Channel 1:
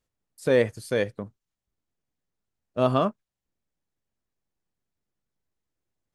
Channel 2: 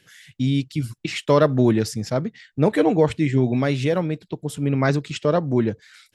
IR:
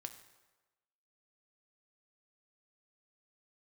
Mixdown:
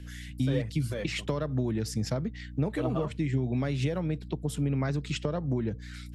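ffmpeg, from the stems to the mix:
-filter_complex "[0:a]aphaser=in_gain=1:out_gain=1:delay=5:decay=0.58:speed=1.4:type=triangular,volume=0.355[s0];[1:a]acompressor=threshold=0.0794:ratio=6,aeval=exprs='val(0)+0.00891*(sin(2*PI*60*n/s)+sin(2*PI*2*60*n/s)/2+sin(2*PI*3*60*n/s)/3+sin(2*PI*4*60*n/s)/4+sin(2*PI*5*60*n/s)/5)':c=same,volume=1[s1];[s0][s1]amix=inputs=2:normalize=0,acrossover=split=190[s2][s3];[s3]acompressor=threshold=0.0178:ratio=2[s4];[s2][s4]amix=inputs=2:normalize=0"

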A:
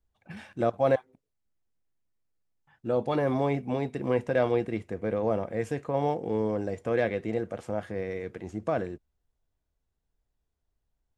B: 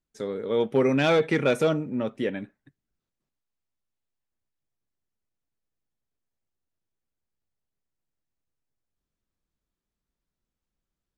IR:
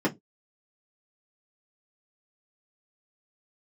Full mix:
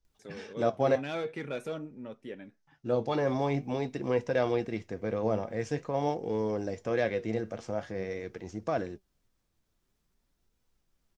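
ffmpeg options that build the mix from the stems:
-filter_complex "[0:a]lowpass=f=5700:t=q:w=3.4,volume=1.26[s0];[1:a]acompressor=mode=upward:threshold=0.00631:ratio=2.5,adelay=50,volume=0.335[s1];[s0][s1]amix=inputs=2:normalize=0,flanger=delay=2:depth=7.2:regen=76:speed=0.47:shape=sinusoidal"

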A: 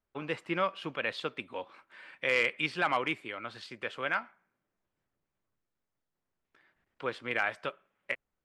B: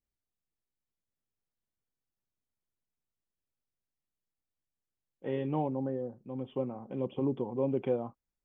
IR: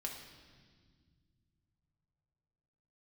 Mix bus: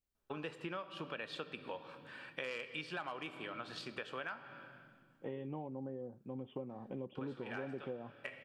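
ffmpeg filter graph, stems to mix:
-filter_complex "[0:a]bandreject=f=2100:w=5.4,adelay=150,volume=0.75,asplit=2[s0][s1];[s1]volume=0.668[s2];[1:a]volume=0.841,asplit=2[s3][s4];[s4]apad=whole_len=379027[s5];[s0][s5]sidechaincompress=threshold=0.00355:ratio=8:attack=16:release=357[s6];[2:a]atrim=start_sample=2205[s7];[s2][s7]afir=irnorm=-1:irlink=0[s8];[s6][s3][s8]amix=inputs=3:normalize=0,acompressor=threshold=0.01:ratio=6"

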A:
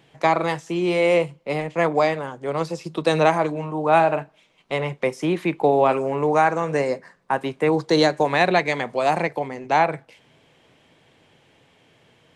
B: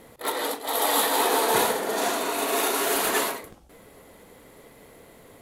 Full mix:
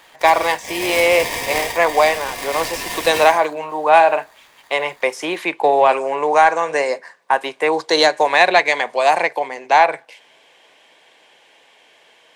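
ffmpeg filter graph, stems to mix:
-filter_complex "[0:a]highpass=640,bandreject=f=1300:w=7.4,acontrast=53,volume=1.33[s0];[1:a]lowpass=9800,aeval=exprs='val(0)*sgn(sin(2*PI*1400*n/s))':c=same,volume=0.794[s1];[s0][s1]amix=inputs=2:normalize=0"

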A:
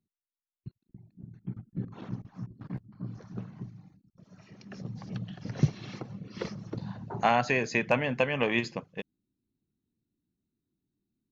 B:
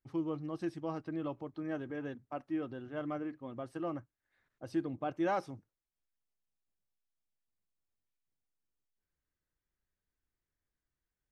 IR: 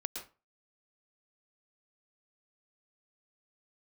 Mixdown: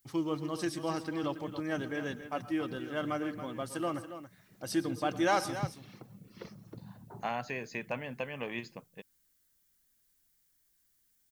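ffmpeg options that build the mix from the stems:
-filter_complex "[0:a]volume=0.282[s0];[1:a]bandreject=f=2600:w=21,crystalizer=i=7.5:c=0,volume=1,asplit=3[s1][s2][s3];[s2]volume=0.355[s4];[s3]volume=0.355[s5];[2:a]atrim=start_sample=2205[s6];[s4][s6]afir=irnorm=-1:irlink=0[s7];[s5]aecho=0:1:279:1[s8];[s0][s1][s7][s8]amix=inputs=4:normalize=0"

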